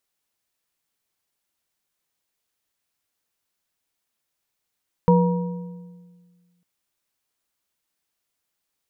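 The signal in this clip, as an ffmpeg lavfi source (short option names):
-f lavfi -i "aevalsrc='0.237*pow(10,-3*t/1.73)*sin(2*PI*176*t)+0.168*pow(10,-3*t/1.276)*sin(2*PI*485.2*t)+0.119*pow(10,-3*t/1.043)*sin(2*PI*951.1*t)':d=1.55:s=44100"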